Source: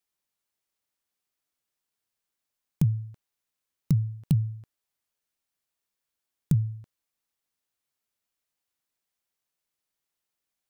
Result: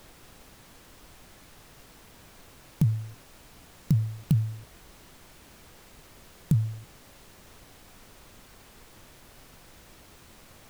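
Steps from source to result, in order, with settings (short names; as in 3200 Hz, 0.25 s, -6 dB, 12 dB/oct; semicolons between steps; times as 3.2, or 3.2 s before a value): added noise pink -52 dBFS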